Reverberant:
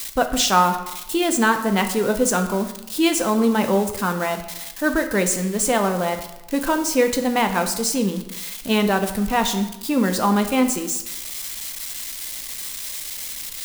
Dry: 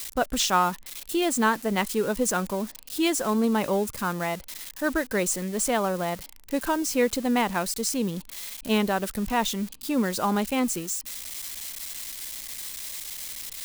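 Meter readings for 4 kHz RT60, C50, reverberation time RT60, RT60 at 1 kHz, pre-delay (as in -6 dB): 0.70 s, 10.0 dB, 0.95 s, 0.95 s, 3 ms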